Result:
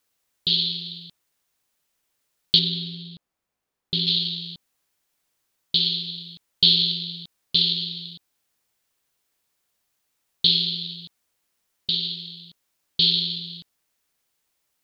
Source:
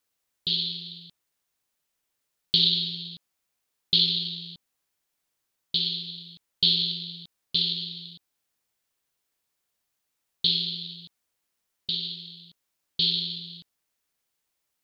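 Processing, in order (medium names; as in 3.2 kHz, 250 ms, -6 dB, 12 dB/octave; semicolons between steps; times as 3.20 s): 2.59–4.07 s: treble shelf 2 kHz -12 dB; trim +5 dB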